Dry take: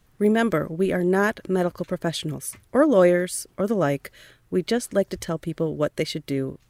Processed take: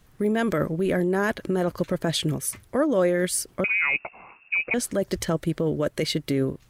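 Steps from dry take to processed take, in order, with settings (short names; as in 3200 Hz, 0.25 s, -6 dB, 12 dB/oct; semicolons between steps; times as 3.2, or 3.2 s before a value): in parallel at +1 dB: negative-ratio compressor -25 dBFS, ratio -0.5; 3.64–4.74 on the sum: inverted band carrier 2700 Hz; gain -5.5 dB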